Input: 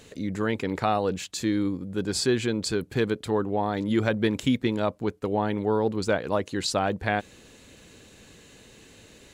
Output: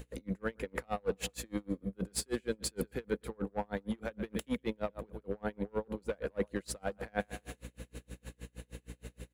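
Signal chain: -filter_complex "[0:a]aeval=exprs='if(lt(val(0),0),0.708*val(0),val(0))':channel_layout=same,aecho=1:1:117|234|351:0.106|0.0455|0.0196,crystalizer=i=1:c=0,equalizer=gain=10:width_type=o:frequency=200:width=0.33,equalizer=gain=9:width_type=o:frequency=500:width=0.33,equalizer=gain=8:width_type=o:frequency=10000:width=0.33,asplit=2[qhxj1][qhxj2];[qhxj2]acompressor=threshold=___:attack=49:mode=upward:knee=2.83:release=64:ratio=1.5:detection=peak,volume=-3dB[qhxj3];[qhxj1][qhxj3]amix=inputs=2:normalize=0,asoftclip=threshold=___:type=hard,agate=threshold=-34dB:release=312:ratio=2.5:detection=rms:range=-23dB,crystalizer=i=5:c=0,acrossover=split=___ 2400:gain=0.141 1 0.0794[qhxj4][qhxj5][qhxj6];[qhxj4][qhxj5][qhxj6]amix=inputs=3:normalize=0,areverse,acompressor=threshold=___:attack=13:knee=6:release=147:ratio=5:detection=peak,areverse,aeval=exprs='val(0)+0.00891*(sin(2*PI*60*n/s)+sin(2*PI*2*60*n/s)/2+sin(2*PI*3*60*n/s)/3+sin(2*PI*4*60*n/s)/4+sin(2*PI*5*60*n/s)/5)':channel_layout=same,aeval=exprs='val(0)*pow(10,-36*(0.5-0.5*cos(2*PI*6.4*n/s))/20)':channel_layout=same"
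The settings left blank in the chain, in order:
-34dB, -10dB, 200, -30dB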